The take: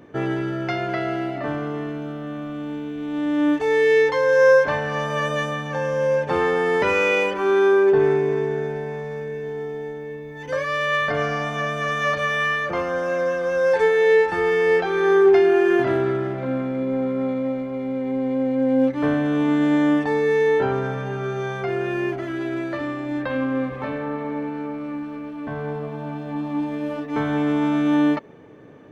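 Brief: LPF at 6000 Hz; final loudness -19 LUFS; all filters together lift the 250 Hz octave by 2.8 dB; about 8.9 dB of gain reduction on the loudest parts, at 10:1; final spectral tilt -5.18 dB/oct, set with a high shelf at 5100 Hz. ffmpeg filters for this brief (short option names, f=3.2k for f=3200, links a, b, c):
-af "lowpass=6k,equalizer=f=250:t=o:g=3.5,highshelf=f=5.1k:g=3,acompressor=threshold=-19dB:ratio=10,volume=5.5dB"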